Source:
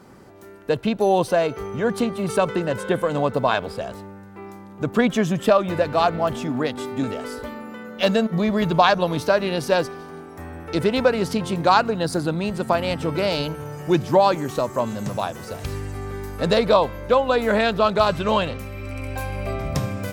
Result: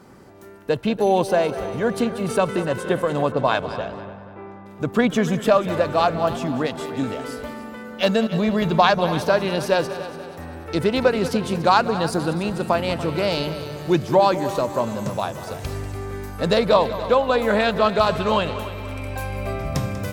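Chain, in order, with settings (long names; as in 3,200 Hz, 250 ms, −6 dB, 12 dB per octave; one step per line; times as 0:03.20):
echo machine with several playback heads 96 ms, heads second and third, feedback 49%, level −14.5 dB
0:03.32–0:04.66: low-pass that shuts in the quiet parts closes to 1,700 Hz, open at −15 dBFS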